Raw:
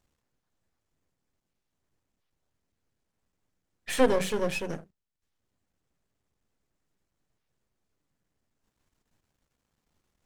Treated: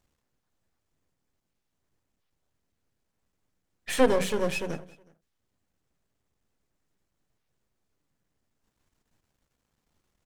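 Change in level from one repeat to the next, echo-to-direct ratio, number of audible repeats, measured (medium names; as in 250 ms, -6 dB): -6.0 dB, -20.0 dB, 2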